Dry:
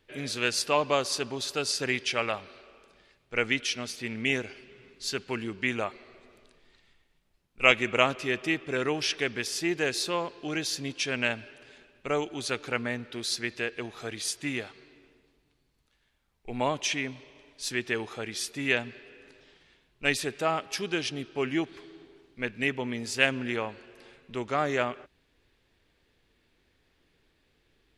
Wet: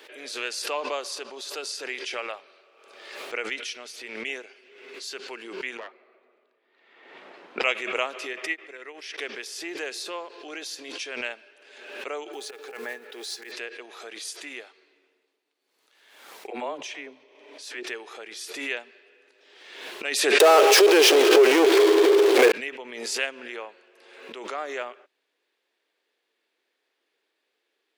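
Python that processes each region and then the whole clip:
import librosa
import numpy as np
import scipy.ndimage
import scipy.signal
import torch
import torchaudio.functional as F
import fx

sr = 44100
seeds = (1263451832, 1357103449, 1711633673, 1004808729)

y = fx.chain(x, sr, fx.self_delay(depth_ms=0.66),
    fx.bandpass_edges(low_hz=110.0, high_hz=2100.0),
    fx.peak_eq(hz=210.0, db=4.0, octaves=0.92), at=(5.77, 7.64))
y = fx.chain(y, sr, fx.peak_eq(hz=2000.0, db=10.0, octaves=0.37),
    fx.upward_expand(threshold_db=-39.0, expansion=2.5), at=(8.33, 9.18))
y = fx.chain(y, sr, fx.block_float(bits=5),
    fx.auto_swell(attack_ms=117.0),
    fx.small_body(hz=(430.0, 800.0, 1700.0), ring_ms=95, db=14), at=(12.33, 13.52))
y = fx.chain(y, sr, fx.tilt_eq(slope=-2.0),
    fx.dispersion(late='lows', ms=55.0, hz=350.0), at=(16.5, 17.83))
y = fx.chain(y, sr, fx.power_curve(exponent=0.35),
    fx.highpass_res(hz=420.0, q=4.3),
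    fx.env_flatten(amount_pct=70), at=(20.4, 22.52))
y = scipy.signal.sosfilt(scipy.signal.butter(4, 370.0, 'highpass', fs=sr, output='sos'), y)
y = fx.pre_swell(y, sr, db_per_s=48.0)
y = y * 10.0 ** (-5.0 / 20.0)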